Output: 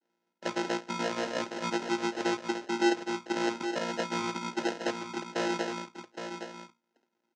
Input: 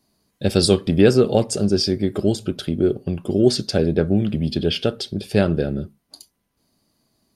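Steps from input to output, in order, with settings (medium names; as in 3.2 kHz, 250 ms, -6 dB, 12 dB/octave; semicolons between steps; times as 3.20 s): vocoder on a held chord bare fifth, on A#2; peak limiter -11.5 dBFS, peak gain reduction 8 dB; sample-and-hold 38×; elliptic band-pass 290–6300 Hz, stop band 70 dB; on a send: delay 816 ms -8 dB; on the sum: trim -5 dB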